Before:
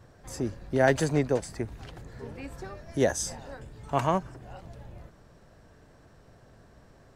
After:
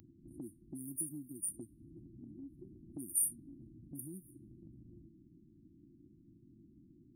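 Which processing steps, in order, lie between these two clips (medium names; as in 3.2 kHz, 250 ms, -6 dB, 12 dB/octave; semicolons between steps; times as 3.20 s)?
level-controlled noise filter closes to 410 Hz, open at -25.5 dBFS; brick-wall FIR band-stop 360–8900 Hz; bass shelf 210 Hz -10 dB; compression 4:1, threshold -53 dBFS, peak gain reduction 21 dB; RIAA curve recording; trim +12 dB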